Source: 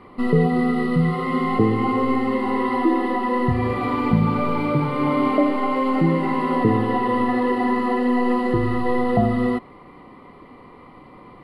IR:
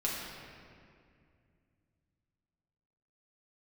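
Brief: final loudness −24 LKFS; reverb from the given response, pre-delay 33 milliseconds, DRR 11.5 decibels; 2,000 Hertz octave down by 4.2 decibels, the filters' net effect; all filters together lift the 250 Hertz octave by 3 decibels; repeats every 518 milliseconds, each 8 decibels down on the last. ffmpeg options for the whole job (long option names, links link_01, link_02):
-filter_complex "[0:a]equalizer=frequency=250:width_type=o:gain=3.5,equalizer=frequency=2000:width_type=o:gain=-4.5,aecho=1:1:518|1036|1554|2072|2590:0.398|0.159|0.0637|0.0255|0.0102,asplit=2[link_01][link_02];[1:a]atrim=start_sample=2205,adelay=33[link_03];[link_02][link_03]afir=irnorm=-1:irlink=0,volume=-17dB[link_04];[link_01][link_04]amix=inputs=2:normalize=0,volume=-6.5dB"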